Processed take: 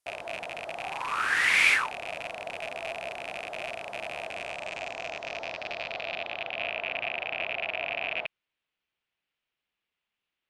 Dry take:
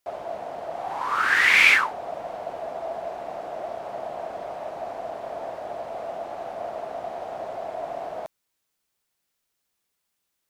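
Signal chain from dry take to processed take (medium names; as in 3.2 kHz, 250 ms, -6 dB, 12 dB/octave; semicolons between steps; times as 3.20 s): rattle on loud lows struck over -48 dBFS, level -18 dBFS; low-pass sweep 10 kHz -> 2.8 kHz, 4.21–6.81 s; trim -6 dB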